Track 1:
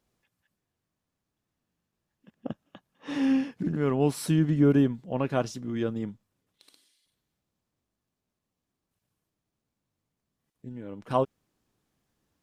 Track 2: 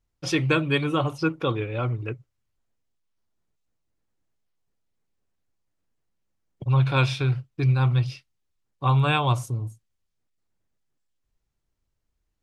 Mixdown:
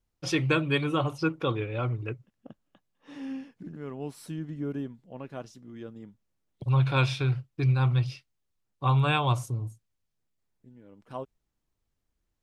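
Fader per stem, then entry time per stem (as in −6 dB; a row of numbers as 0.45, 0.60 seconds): −12.5, −3.0 decibels; 0.00, 0.00 seconds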